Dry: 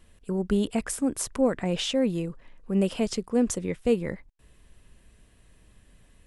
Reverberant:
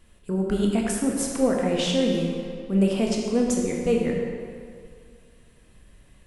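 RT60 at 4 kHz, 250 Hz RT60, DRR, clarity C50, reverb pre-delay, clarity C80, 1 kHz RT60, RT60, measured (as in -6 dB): 1.5 s, 2.0 s, -1.0 dB, 1.5 dB, 14 ms, 3.0 dB, 2.2 s, 2.2 s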